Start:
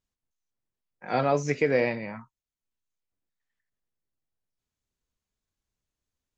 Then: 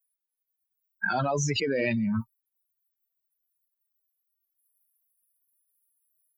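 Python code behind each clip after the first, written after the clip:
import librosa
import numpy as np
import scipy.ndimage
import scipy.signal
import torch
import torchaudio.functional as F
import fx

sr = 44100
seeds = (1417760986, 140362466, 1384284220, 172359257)

y = fx.bin_expand(x, sr, power=3.0)
y = fx.noise_reduce_blind(y, sr, reduce_db=21)
y = fx.env_flatten(y, sr, amount_pct=100)
y = y * 10.0 ** (-4.0 / 20.0)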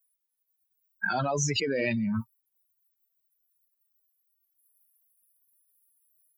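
y = fx.high_shelf(x, sr, hz=5600.0, db=7.0)
y = y * 10.0 ** (-1.5 / 20.0)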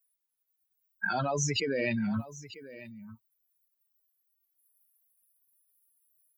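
y = x + 10.0 ** (-16.5 / 20.0) * np.pad(x, (int(942 * sr / 1000.0), 0))[:len(x)]
y = y * 10.0 ** (-2.0 / 20.0)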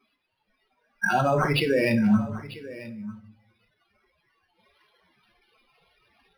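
y = fx.room_shoebox(x, sr, seeds[0], volume_m3=560.0, walls='furnished', distance_m=1.0)
y = np.interp(np.arange(len(y)), np.arange(len(y))[::6], y[::6])
y = y * 10.0 ** (7.5 / 20.0)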